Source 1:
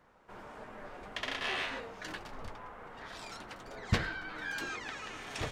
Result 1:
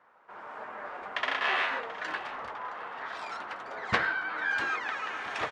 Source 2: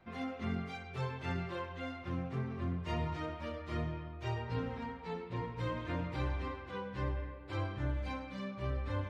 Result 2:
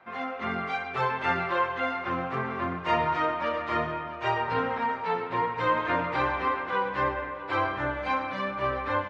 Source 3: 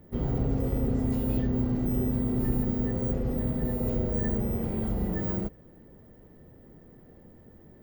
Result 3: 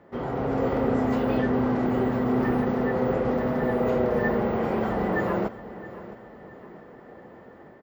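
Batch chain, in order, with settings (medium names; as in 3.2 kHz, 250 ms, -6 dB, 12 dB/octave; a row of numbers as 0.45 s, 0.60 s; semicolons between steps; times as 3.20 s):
level rider gain up to 5.5 dB; band-pass filter 1.2 kHz, Q 1; vibrato 2.6 Hz 8.2 cents; feedback delay 667 ms, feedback 41%, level -16 dB; peak normalisation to -12 dBFS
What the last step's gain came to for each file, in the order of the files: +5.5 dB, +13.0 dB, +12.0 dB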